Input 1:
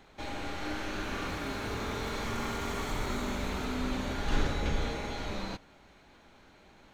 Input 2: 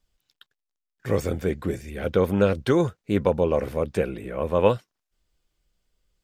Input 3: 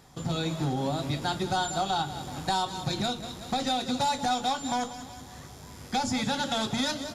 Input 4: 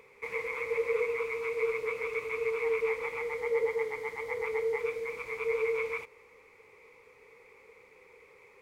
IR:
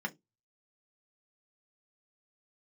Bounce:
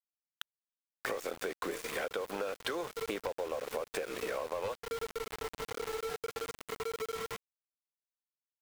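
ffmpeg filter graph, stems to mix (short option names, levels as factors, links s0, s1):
-filter_complex "[0:a]aexciter=amount=3.7:drive=2.5:freq=3600,adelay=800,volume=0.158,asplit=2[s0][s1];[s1]volume=0.0631[s2];[1:a]highpass=860,aeval=exprs='0.237*sin(PI/2*2.51*val(0)/0.237)':c=same,volume=0.841,asplit=3[s3][s4][s5];[s4]volume=0.0708[s6];[2:a]lowshelf=f=290:g=-11,asoftclip=type=tanh:threshold=0.0473,adelay=1850,volume=0.2[s7];[3:a]lowpass=1100,aecho=1:1:2.9:0.85,acompressor=threshold=0.0178:ratio=16,adelay=1400,volume=0.841[s8];[s5]apad=whole_len=396721[s9];[s7][s9]sidechaincompress=threshold=0.0141:ratio=8:attack=16:release=1070[s10];[s3][s8]amix=inputs=2:normalize=0,equalizer=f=280:w=0.31:g=7.5,acompressor=threshold=0.0794:ratio=6,volume=1[s11];[s0][s10]amix=inputs=2:normalize=0,alimiter=level_in=6.31:limit=0.0631:level=0:latency=1:release=345,volume=0.158,volume=1[s12];[4:a]atrim=start_sample=2205[s13];[s2][s6]amix=inputs=2:normalize=0[s14];[s14][s13]afir=irnorm=-1:irlink=0[s15];[s11][s12][s15]amix=inputs=3:normalize=0,aeval=exprs='val(0)*gte(abs(val(0)),0.0282)':c=same,acompressor=threshold=0.02:ratio=6"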